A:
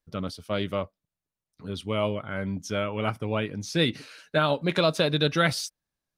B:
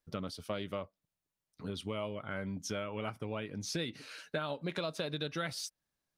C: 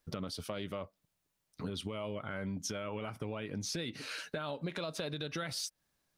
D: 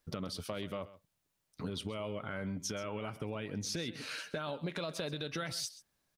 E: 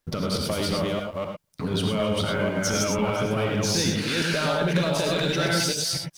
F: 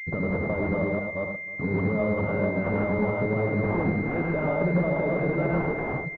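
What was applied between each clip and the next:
compressor 6:1, threshold -34 dBFS, peak gain reduction 15.5 dB; low shelf 110 Hz -4.5 dB
limiter -29.5 dBFS, peak gain reduction 7.5 dB; compressor 3:1, threshold -44 dBFS, peak gain reduction 7.5 dB; gain +7.5 dB
echo 0.131 s -16.5 dB
reverse delay 0.249 s, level -0.5 dB; sample leveller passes 2; non-linear reverb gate 0.13 s rising, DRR 2.5 dB; gain +4 dB
feedback echo 0.313 s, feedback 35%, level -19 dB; pulse-width modulation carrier 2100 Hz

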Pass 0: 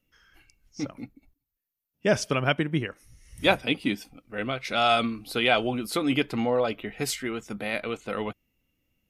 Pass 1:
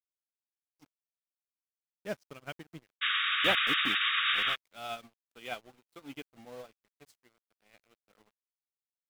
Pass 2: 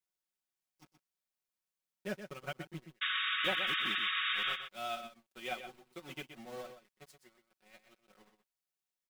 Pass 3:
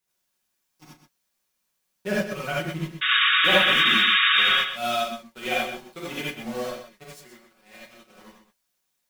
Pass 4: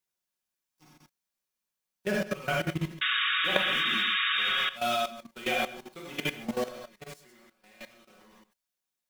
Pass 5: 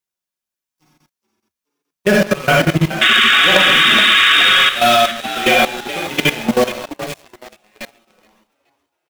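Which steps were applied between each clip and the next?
sample gate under -27 dBFS; painted sound noise, 3.01–4.56, 1100–3800 Hz -17 dBFS; upward expander 2.5:1, over -34 dBFS; gain -8.5 dB
comb 5.4 ms, depth 91%; compressor 2:1, threshold -38 dBFS, peak gain reduction 11 dB; on a send: echo 0.124 s -9.5 dB
non-linear reverb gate 0.11 s rising, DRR -5.5 dB; gain +8.5 dB
level quantiser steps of 15 dB; gain +2.5 dB
on a send: frequency-shifting echo 0.423 s, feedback 48%, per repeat +66 Hz, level -13 dB; on the sum: sample leveller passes 3; gain +6 dB

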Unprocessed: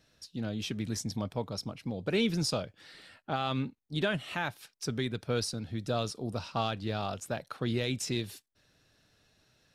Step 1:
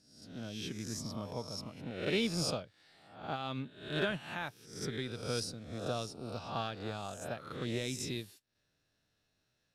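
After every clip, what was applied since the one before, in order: spectral swells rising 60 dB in 0.84 s; upward expander 1.5:1, over -43 dBFS; gain -4.5 dB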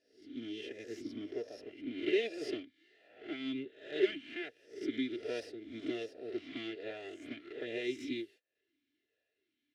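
minimum comb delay 2.9 ms; vowel sweep e-i 1.3 Hz; gain +10.5 dB

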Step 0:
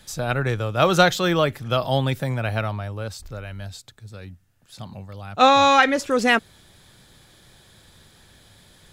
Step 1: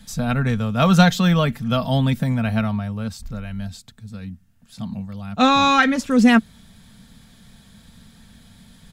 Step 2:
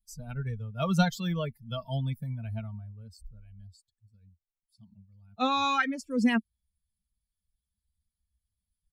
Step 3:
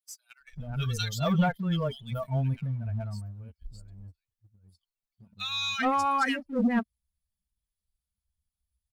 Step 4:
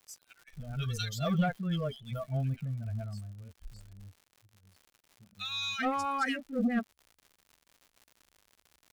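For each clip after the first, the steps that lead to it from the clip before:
resonant low shelf 280 Hz +6.5 dB, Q 3; comb 4.4 ms, depth 40%; gain -1 dB
per-bin expansion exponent 2; gain -8.5 dB
three bands offset in time highs, lows, mids 0.4/0.43 s, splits 290/1800 Hz; sample leveller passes 1
Butterworth band-stop 960 Hz, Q 3.5; crackle 140/s -42 dBFS; gain -4 dB

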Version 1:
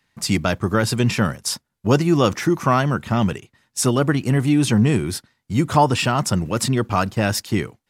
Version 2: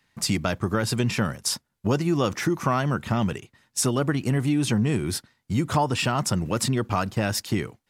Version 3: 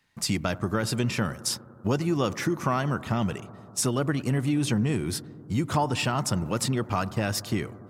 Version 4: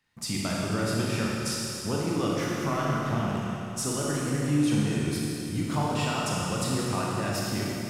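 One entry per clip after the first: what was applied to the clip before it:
compressor 2.5:1, threshold -22 dBFS, peak gain reduction 8.5 dB
analogue delay 97 ms, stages 1024, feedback 83%, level -19.5 dB; gain -2.5 dB
Schroeder reverb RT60 3 s, combs from 27 ms, DRR -4.5 dB; gain -6.5 dB

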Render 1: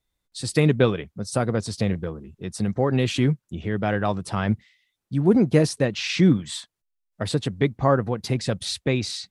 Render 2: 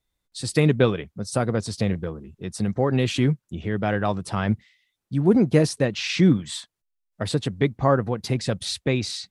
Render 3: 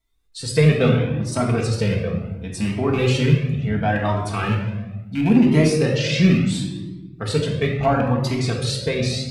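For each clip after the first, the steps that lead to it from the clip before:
nothing audible
rattling part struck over -22 dBFS, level -22 dBFS; shoebox room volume 690 m³, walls mixed, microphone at 1.6 m; cascading flanger rising 0.72 Hz; gain +4 dB

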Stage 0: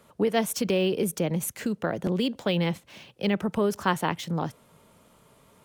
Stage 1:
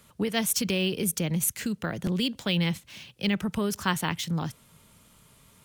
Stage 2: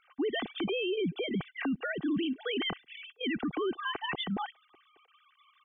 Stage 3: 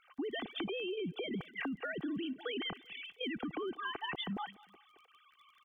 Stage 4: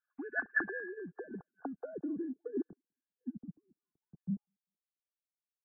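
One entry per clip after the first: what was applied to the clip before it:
bell 560 Hz -13.5 dB 2.8 oct; gain +6 dB
sine-wave speech; comb 2.6 ms, depth 60%; limiter -25 dBFS, peak gain reduction 11.5 dB
compressor, threshold -36 dBFS, peak gain reduction 8 dB; crackle 29/s -56 dBFS; feedback echo 0.197 s, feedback 31%, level -21.5 dB
nonlinear frequency compression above 1400 Hz 4:1; low-pass sweep 1800 Hz -> 170 Hz, 0.52–3.57; upward expander 2.5:1, over -54 dBFS; gain +4 dB

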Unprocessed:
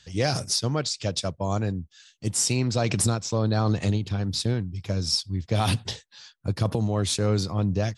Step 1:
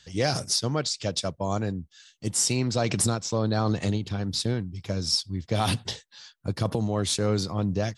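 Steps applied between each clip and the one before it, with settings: bell 91 Hz -4 dB 1.2 oct; notch 2500 Hz, Q 24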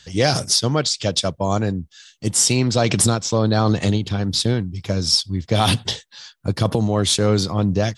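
dynamic EQ 3300 Hz, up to +5 dB, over -50 dBFS, Q 5.1; gain +7.5 dB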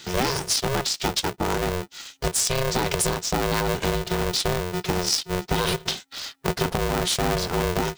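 compressor 3:1, threshold -30 dBFS, peak gain reduction 13.5 dB; polarity switched at an audio rate 270 Hz; gain +5.5 dB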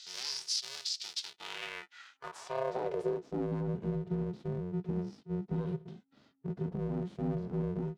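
harmonic-percussive split percussive -10 dB; band-pass sweep 4800 Hz -> 210 Hz, 1.17–3.59

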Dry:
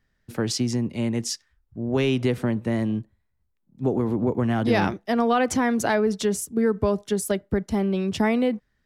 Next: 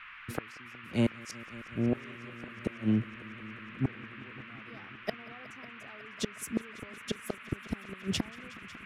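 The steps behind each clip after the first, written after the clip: flipped gate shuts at -17 dBFS, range -32 dB; multi-head echo 0.183 s, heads all three, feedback 74%, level -24 dB; band noise 1100–2700 Hz -49 dBFS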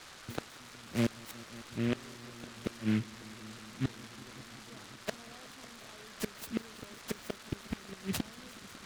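noise-modulated delay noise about 2000 Hz, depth 0.11 ms; gain -3 dB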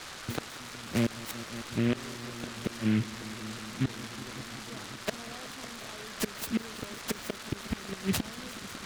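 limiter -27 dBFS, peak gain reduction 8 dB; gain +8 dB

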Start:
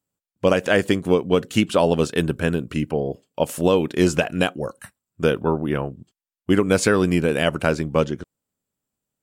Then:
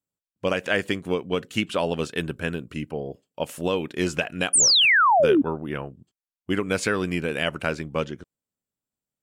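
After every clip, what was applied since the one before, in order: dynamic EQ 2300 Hz, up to +7 dB, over -37 dBFS, Q 0.78; painted sound fall, 4.53–5.42, 260–9800 Hz -9 dBFS; gain -8 dB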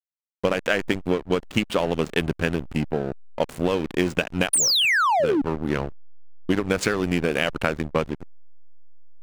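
compressor 16:1, threshold -25 dBFS, peak gain reduction 11.5 dB; backlash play -30 dBFS; gain +8.5 dB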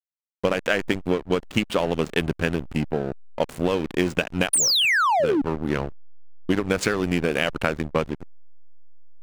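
nothing audible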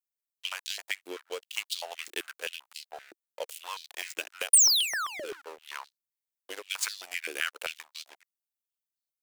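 differentiator; stepped high-pass 7.7 Hz 340–4100 Hz

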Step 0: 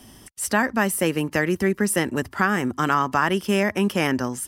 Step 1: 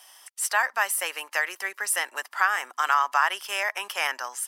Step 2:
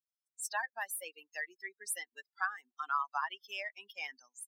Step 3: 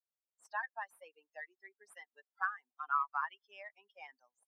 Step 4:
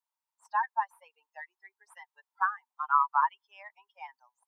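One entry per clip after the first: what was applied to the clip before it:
HPF 770 Hz 24 dB/oct
per-bin expansion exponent 3; gain -7.5 dB
added harmonics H 6 -36 dB, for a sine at -19.5 dBFS; auto-wah 550–1300 Hz, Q 2.2, up, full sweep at -32.5 dBFS; gain +1.5 dB
resonant high-pass 930 Hz, resonance Q 8.7

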